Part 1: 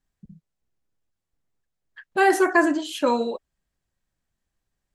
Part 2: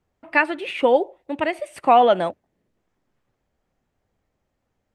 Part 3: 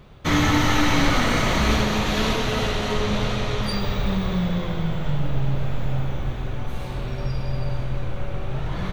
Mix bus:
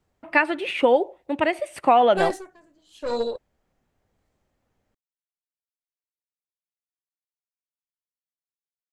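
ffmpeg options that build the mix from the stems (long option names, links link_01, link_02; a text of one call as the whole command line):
ffmpeg -i stem1.wav -i stem2.wav -filter_complex "[0:a]equalizer=frequency=500:width_type=o:width=1:gain=11,equalizer=frequency=4000:width_type=o:width=1:gain=9,equalizer=frequency=8000:width_type=o:width=1:gain=8,aeval=exprs='(tanh(2.82*val(0)+0.4)-tanh(0.4))/2.82':channel_layout=same,aeval=exprs='val(0)*pow(10,-35*(0.5-0.5*cos(2*PI*0.93*n/s))/20)':channel_layout=same,volume=-6.5dB[link_01];[1:a]acompressor=threshold=-15dB:ratio=3,volume=1.5dB[link_02];[link_01][link_02]amix=inputs=2:normalize=0" out.wav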